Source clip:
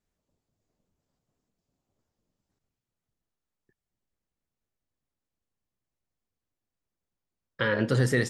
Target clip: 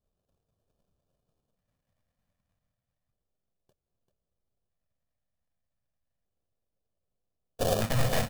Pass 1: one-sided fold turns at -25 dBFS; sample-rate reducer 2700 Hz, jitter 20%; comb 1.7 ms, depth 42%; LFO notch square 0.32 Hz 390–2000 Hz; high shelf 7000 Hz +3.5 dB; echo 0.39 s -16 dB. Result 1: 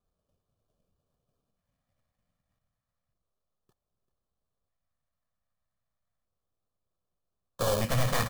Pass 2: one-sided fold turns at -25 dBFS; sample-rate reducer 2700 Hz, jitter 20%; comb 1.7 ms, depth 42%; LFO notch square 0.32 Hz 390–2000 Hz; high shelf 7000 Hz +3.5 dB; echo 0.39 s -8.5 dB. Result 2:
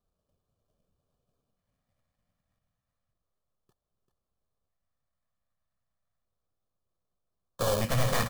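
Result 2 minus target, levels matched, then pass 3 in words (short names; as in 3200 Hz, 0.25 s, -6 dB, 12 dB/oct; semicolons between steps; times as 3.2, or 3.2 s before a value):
sample-rate reducer: distortion -4 dB
one-sided fold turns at -25 dBFS; sample-rate reducer 1200 Hz, jitter 20%; comb 1.7 ms, depth 42%; LFO notch square 0.32 Hz 390–2000 Hz; high shelf 7000 Hz +3.5 dB; echo 0.39 s -8.5 dB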